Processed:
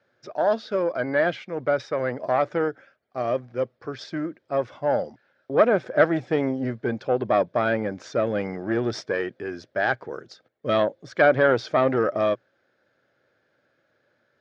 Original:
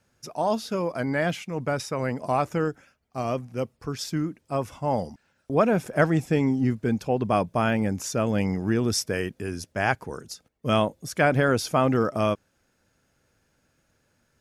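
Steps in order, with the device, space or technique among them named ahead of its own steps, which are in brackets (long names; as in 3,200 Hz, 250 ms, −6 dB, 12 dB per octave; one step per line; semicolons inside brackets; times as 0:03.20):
guitar amplifier (tube saturation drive 12 dB, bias 0.55; bass and treble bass −13 dB, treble +5 dB; loudspeaker in its box 96–3,600 Hz, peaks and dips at 120 Hz +8 dB, 350 Hz +4 dB, 570 Hz +6 dB, 950 Hz −5 dB, 1,600 Hz +4 dB, 2,700 Hz −8 dB)
level +4.5 dB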